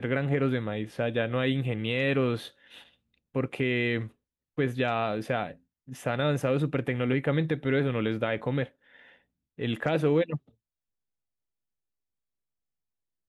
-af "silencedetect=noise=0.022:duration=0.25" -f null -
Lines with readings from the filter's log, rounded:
silence_start: 2.47
silence_end: 3.36 | silence_duration: 0.88
silence_start: 4.06
silence_end: 4.58 | silence_duration: 0.52
silence_start: 5.51
silence_end: 5.92 | silence_duration: 0.41
silence_start: 8.64
silence_end: 9.59 | silence_duration: 0.95
silence_start: 10.37
silence_end: 13.28 | silence_duration: 2.92